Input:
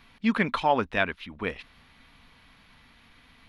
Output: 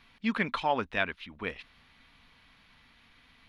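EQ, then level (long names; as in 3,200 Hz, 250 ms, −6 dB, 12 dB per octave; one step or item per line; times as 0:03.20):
low-pass filter 3,300 Hz 6 dB per octave
high-shelf EQ 2,100 Hz +9 dB
−6.0 dB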